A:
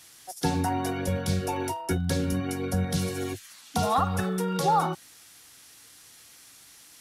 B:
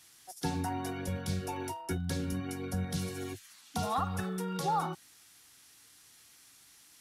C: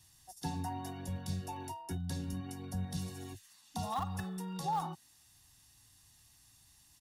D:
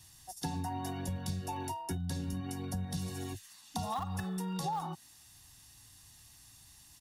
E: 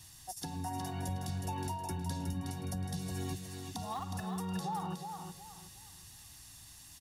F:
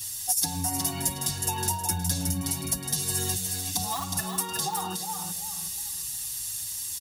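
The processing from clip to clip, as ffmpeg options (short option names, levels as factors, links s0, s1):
-af "equalizer=f=550:t=o:w=0.51:g=-4.5,volume=0.447"
-filter_complex "[0:a]aecho=1:1:1.1:0.51,acrossover=split=120|1600|2200[s0][s1][s2][s3];[s0]acompressor=mode=upward:threshold=0.00282:ratio=2.5[s4];[s2]acrusher=bits=6:mix=0:aa=0.000001[s5];[s4][s1][s5][s3]amix=inputs=4:normalize=0,volume=0.501"
-af "acompressor=threshold=0.0112:ratio=5,volume=2"
-filter_complex "[0:a]alimiter=level_in=2.51:limit=0.0631:level=0:latency=1:release=479,volume=0.398,asplit=2[s0][s1];[s1]aecho=0:1:366|732|1098|1464:0.501|0.155|0.0482|0.0149[s2];[s0][s2]amix=inputs=2:normalize=0,volume=1.41"
-filter_complex "[0:a]crystalizer=i=5:c=0,asplit=2[s0][s1];[s1]aeval=exprs='0.075*(abs(mod(val(0)/0.075+3,4)-2)-1)':c=same,volume=0.447[s2];[s0][s2]amix=inputs=2:normalize=0,asplit=2[s3][s4];[s4]adelay=6.1,afreqshift=-0.61[s5];[s3][s5]amix=inputs=2:normalize=1,volume=1.78"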